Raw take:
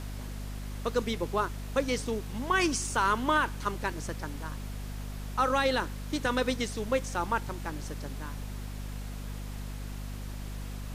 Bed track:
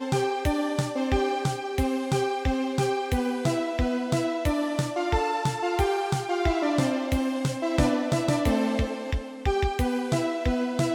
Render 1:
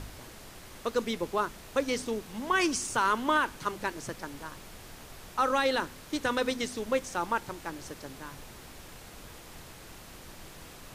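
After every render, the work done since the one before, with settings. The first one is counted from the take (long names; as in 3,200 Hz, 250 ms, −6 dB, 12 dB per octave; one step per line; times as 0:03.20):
hum removal 50 Hz, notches 5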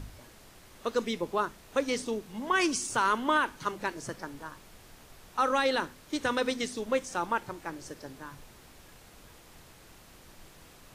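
noise reduction from a noise print 6 dB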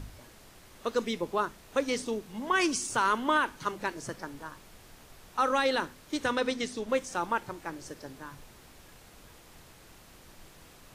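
0:06.31–0:06.89: high-shelf EQ 11,000 Hz −10 dB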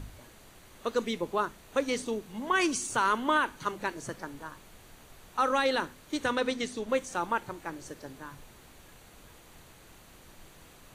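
notch filter 5,200 Hz, Q 7.6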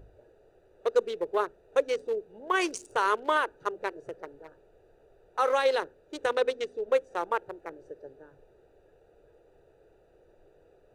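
adaptive Wiener filter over 41 samples
low shelf with overshoot 320 Hz −10 dB, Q 3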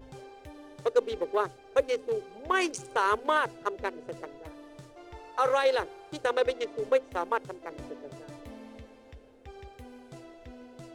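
mix in bed track −22 dB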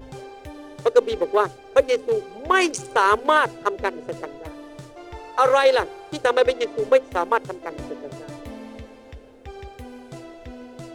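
level +8.5 dB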